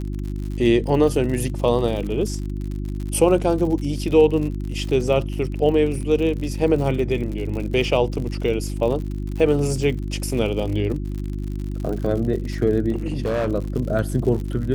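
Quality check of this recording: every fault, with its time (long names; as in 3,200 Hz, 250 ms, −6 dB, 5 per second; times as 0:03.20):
surface crackle 70 per second −29 dBFS
mains hum 50 Hz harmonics 7 −27 dBFS
0:12.91–0:13.48: clipping −18.5 dBFS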